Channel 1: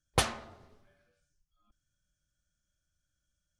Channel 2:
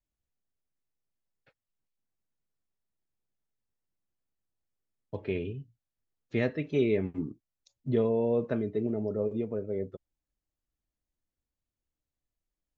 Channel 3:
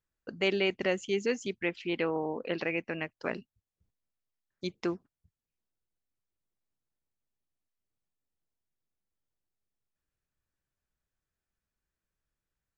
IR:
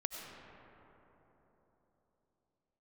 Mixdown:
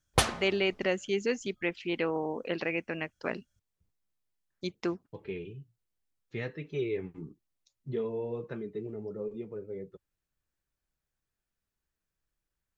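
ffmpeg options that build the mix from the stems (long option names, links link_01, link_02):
-filter_complex "[0:a]volume=2.5dB[link_01];[1:a]flanger=delay=4.3:depth=3.5:regen=-49:speed=1.5:shape=triangular,equalizer=frequency=100:width_type=o:width=0.33:gain=-6,equalizer=frequency=250:width_type=o:width=0.33:gain=-10,equalizer=frequency=630:width_type=o:width=0.33:gain=-12,volume=-0.5dB[link_02];[2:a]volume=0dB[link_03];[link_01][link_02][link_03]amix=inputs=3:normalize=0"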